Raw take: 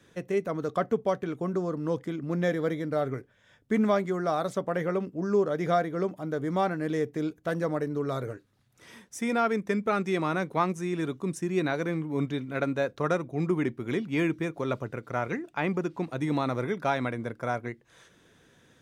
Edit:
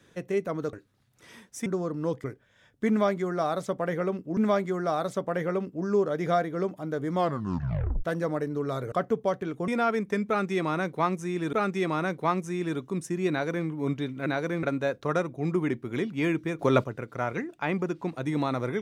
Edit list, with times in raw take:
0.73–1.49 s: swap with 8.32–9.25 s
2.07–3.12 s: delete
3.77–5.25 s: loop, 2 plays
6.55 s: tape stop 0.89 s
9.85–11.10 s: loop, 2 plays
11.62–11.99 s: copy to 12.58 s
14.54–14.79 s: gain +8 dB

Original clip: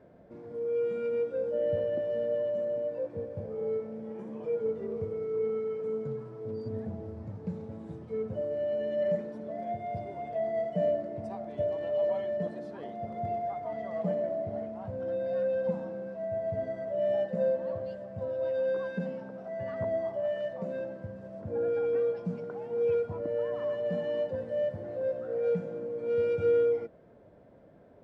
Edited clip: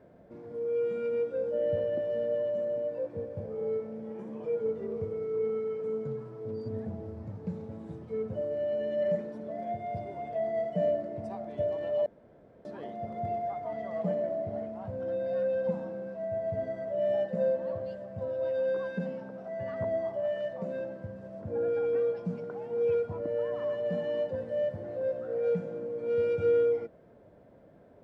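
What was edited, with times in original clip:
12.06–12.65 s: room tone

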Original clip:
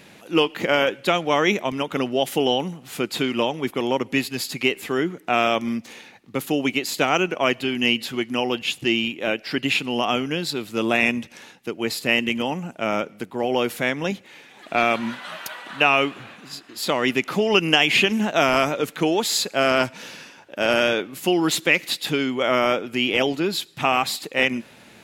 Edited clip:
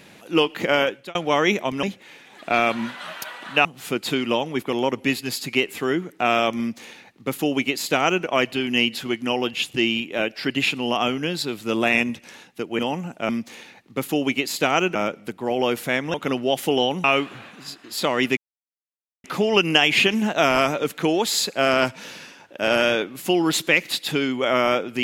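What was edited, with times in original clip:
0.81–1.15 s: fade out
1.83–2.73 s: swap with 14.07–15.89 s
5.67–7.33 s: copy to 12.88 s
11.87–12.38 s: delete
17.22 s: insert silence 0.87 s

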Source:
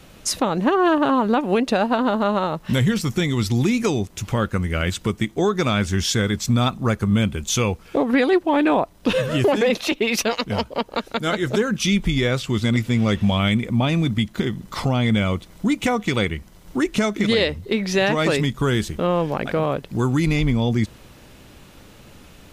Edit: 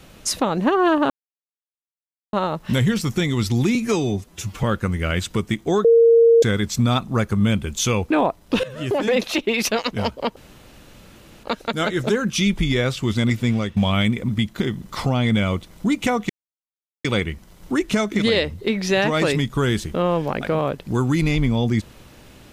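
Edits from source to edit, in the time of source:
1.10–2.33 s: mute
3.75–4.34 s: stretch 1.5×
5.55–6.13 s: bleep 462 Hz -9 dBFS
7.81–8.64 s: delete
9.17–9.71 s: fade in, from -17 dB
10.90 s: insert room tone 1.07 s
12.95–13.23 s: fade out, to -13.5 dB
13.75–14.08 s: delete
16.09 s: insert silence 0.75 s

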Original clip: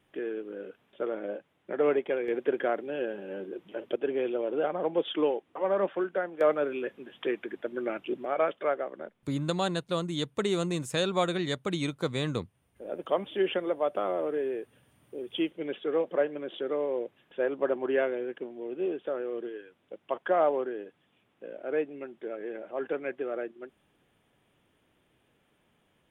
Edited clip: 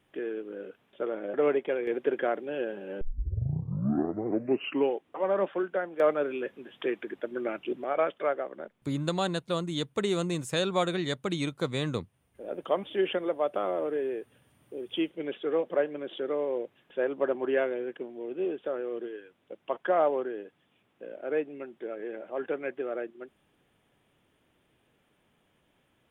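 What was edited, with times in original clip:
1.34–1.75 s: delete
3.42 s: tape start 1.96 s

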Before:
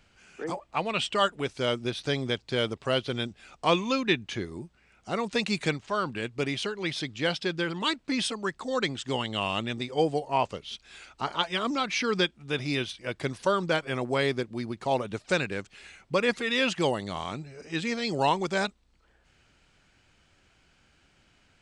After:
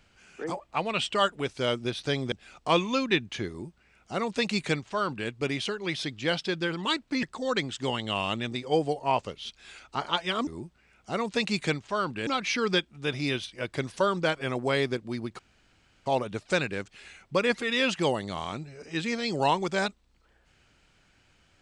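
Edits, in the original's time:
2.32–3.29 s: delete
4.46–6.26 s: copy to 11.73 s
8.20–8.49 s: delete
14.85 s: insert room tone 0.67 s

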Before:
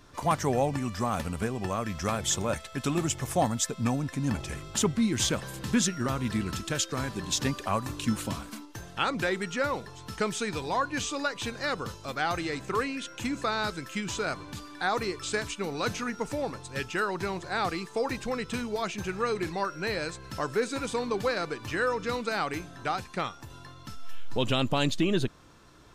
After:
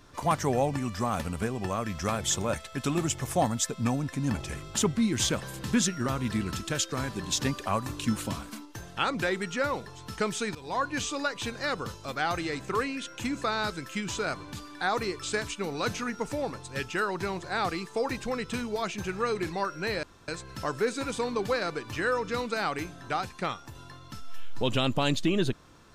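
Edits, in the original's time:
10.55–10.83 s: fade in, from -17.5 dB
20.03 s: insert room tone 0.25 s

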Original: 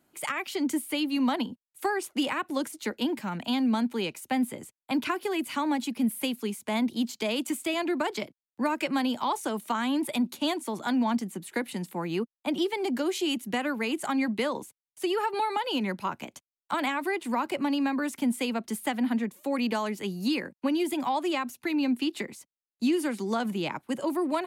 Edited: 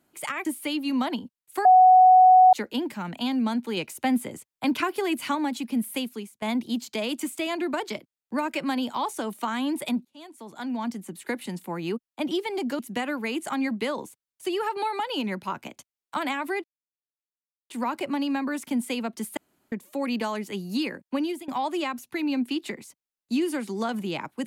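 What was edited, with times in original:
0.45–0.72 s: delete
1.92–2.80 s: bleep 742 Hz -10.5 dBFS
4.04–5.62 s: gain +3 dB
6.31–6.69 s: fade out, to -21.5 dB
10.32–11.51 s: fade in
13.06–13.36 s: delete
17.21 s: insert silence 1.06 s
18.88–19.23 s: room tone
20.73–20.99 s: fade out, to -19 dB

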